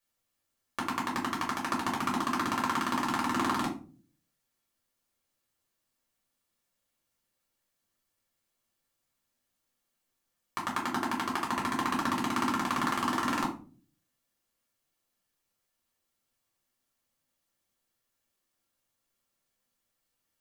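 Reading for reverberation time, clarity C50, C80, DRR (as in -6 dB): 0.40 s, 9.0 dB, 14.0 dB, -4.0 dB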